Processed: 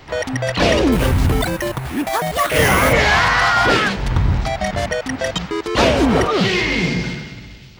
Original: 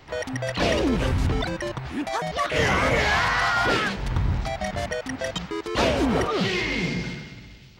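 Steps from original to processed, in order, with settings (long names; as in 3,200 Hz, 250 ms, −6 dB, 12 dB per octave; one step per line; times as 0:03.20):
0:00.92–0:02.93: sample-rate reduction 12,000 Hz, jitter 0%
level +7.5 dB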